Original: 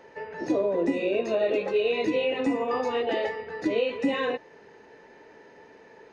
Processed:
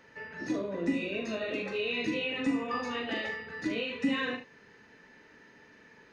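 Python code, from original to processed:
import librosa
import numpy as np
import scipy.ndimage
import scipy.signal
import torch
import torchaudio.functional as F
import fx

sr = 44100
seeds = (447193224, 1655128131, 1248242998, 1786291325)

y = fx.band_shelf(x, sr, hz=570.0, db=-10.5, octaves=1.7)
y = fx.room_early_taps(y, sr, ms=(41, 74), db=(-7.0, -11.5))
y = y * librosa.db_to_amplitude(-1.5)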